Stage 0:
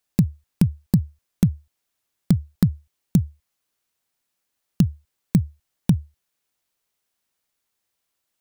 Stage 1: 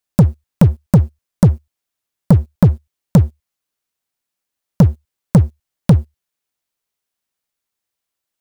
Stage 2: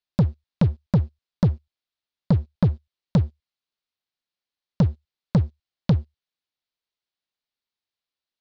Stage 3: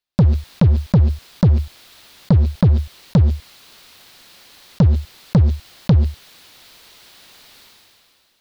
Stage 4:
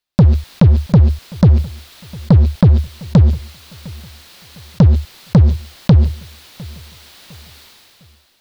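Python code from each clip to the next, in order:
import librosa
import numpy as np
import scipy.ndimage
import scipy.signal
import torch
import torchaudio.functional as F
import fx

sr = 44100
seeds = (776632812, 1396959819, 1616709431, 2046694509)

y1 = fx.leveller(x, sr, passes=3)
y1 = y1 * 10.0 ** (2.5 / 20.0)
y2 = fx.ladder_lowpass(y1, sr, hz=5000.0, resonance_pct=45)
y3 = fx.sustainer(y2, sr, db_per_s=22.0)
y3 = y3 * 10.0 ** (4.5 / 20.0)
y4 = fx.echo_feedback(y3, sr, ms=705, feedback_pct=37, wet_db=-22.5)
y4 = y4 * 10.0 ** (4.0 / 20.0)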